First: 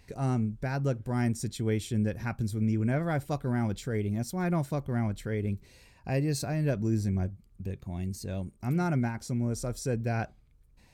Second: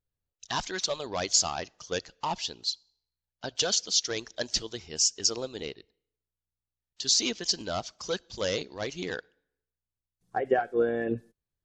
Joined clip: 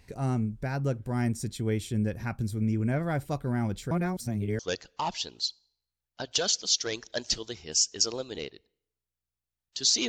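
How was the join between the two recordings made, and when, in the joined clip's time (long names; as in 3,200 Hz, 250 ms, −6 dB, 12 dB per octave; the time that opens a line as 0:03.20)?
first
0:03.91–0:04.59: reverse
0:04.59: continue with second from 0:01.83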